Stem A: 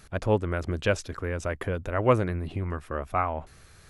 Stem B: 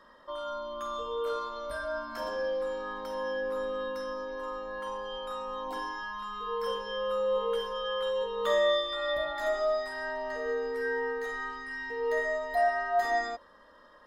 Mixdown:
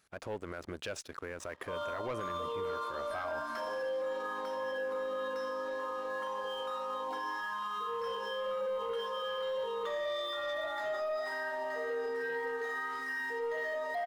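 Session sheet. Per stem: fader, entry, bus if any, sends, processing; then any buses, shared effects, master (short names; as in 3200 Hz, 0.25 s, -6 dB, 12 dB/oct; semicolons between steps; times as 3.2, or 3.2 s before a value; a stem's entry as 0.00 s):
-11.5 dB, 0.00 s, no send, dry
+0.5 dB, 1.40 s, no send, LPF 3400 Hz 6 dB/oct; limiter -23 dBFS, peak gain reduction 6.5 dB; flange 1.8 Hz, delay 4.4 ms, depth 3.5 ms, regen -81%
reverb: off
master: HPF 430 Hz 6 dB/oct; sample leveller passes 2; limiter -30 dBFS, peak gain reduction 9.5 dB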